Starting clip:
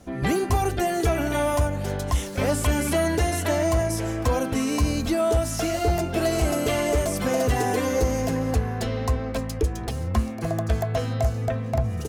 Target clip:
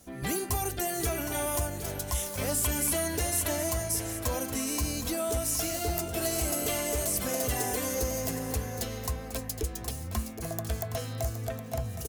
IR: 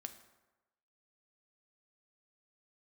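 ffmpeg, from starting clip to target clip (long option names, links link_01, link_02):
-filter_complex "[0:a]aemphasis=mode=production:type=75fm,asplit=2[link_01][link_02];[link_02]aecho=0:1:767:0.282[link_03];[link_01][link_03]amix=inputs=2:normalize=0,volume=-9dB"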